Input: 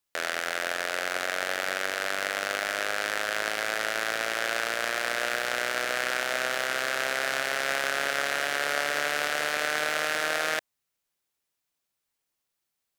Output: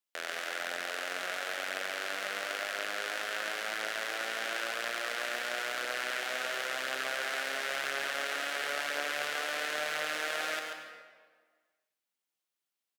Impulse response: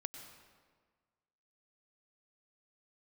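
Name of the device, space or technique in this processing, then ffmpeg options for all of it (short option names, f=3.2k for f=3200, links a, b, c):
PA in a hall: -filter_complex "[0:a]highpass=200,equalizer=f=3.1k:t=o:w=0.77:g=3,aecho=1:1:138:0.501[a];[1:a]atrim=start_sample=2205[b];[a][b]afir=irnorm=-1:irlink=0,volume=-5.5dB"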